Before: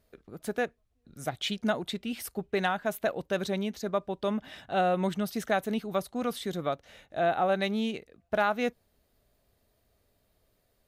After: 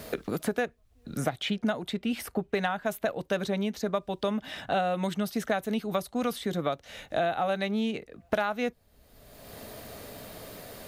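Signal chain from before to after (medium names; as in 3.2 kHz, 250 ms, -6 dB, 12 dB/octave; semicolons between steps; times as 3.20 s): band-stop 370 Hz, Q 12; three bands compressed up and down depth 100%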